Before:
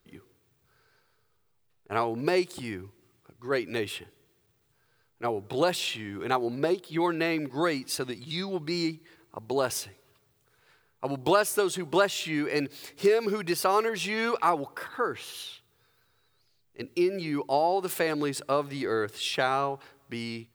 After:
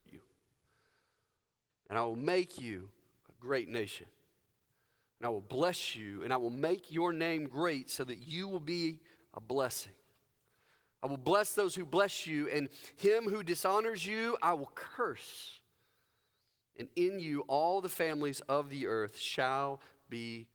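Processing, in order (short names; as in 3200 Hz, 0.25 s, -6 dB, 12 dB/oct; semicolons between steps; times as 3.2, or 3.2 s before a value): 12.6–13.07 expander -52 dBFS; gain -6.5 dB; Opus 20 kbps 48000 Hz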